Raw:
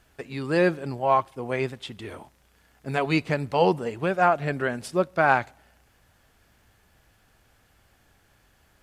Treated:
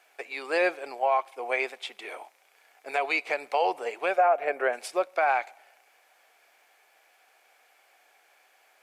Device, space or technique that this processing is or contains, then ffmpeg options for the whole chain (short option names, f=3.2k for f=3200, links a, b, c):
laptop speaker: -filter_complex "[0:a]highpass=f=450:w=0.5412,highpass=f=450:w=1.3066,equalizer=f=740:t=o:w=0.27:g=7.5,equalizer=f=2.3k:t=o:w=0.24:g=10.5,alimiter=limit=-15dB:level=0:latency=1:release=131,asettb=1/sr,asplit=3[a][b][c];[a]atrim=end=4.184[d];[b]atrim=start=4.18:end=4.73,asetpts=PTS-STARTPTS,afade=t=in:d=0.004:c=qsin,afade=t=out:st=0.546:d=0.004:c=qsin,equalizer=f=500:t=o:w=1:g=5,equalizer=f=4k:t=o:w=1:g=-10,equalizer=f=8k:t=o:w=1:g=-7[e];[c]atrim=start=4.726[f];[d][e]acrossfade=d=0.004:c1=hsin:c2=qsin[g];[g][f]acrossfade=d=0.004:c1=qsin:c2=hsin"